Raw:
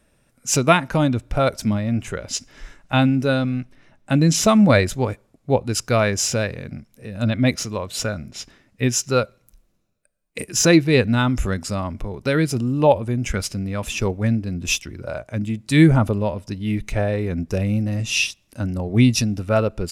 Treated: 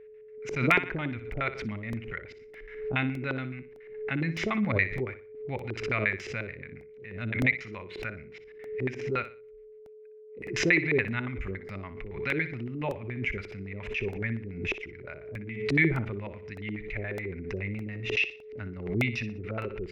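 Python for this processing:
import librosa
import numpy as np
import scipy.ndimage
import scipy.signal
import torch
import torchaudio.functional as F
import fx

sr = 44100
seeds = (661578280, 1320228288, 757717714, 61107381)

p1 = fx.tone_stack(x, sr, knobs='5-5-5')
p2 = fx.filter_lfo_lowpass(p1, sr, shape='square', hz=7.1, low_hz=390.0, high_hz=2100.0, q=6.3)
p3 = p2 + fx.echo_feedback(p2, sr, ms=61, feedback_pct=29, wet_db=-13.0, dry=0)
p4 = p3 + 10.0 ** (-47.0 / 20.0) * np.sin(2.0 * np.pi * 430.0 * np.arange(len(p3)) / sr)
p5 = fx.peak_eq(p4, sr, hz=8500.0, db=-9.5, octaves=0.93)
p6 = fx.buffer_crackle(p5, sr, first_s=0.71, period_s=0.61, block=64, kind='repeat')
y = fx.pre_swell(p6, sr, db_per_s=72.0)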